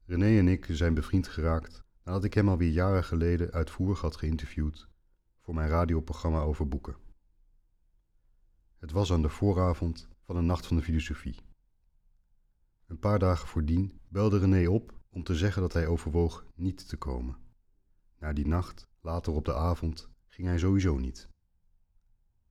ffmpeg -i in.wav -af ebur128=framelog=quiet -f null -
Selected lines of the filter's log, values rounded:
Integrated loudness:
  I:         -29.9 LUFS
  Threshold: -40.6 LUFS
Loudness range:
  LRA:         5.7 LU
  Threshold: -51.7 LUFS
  LRA low:   -34.8 LUFS
  LRA high:  -29.1 LUFS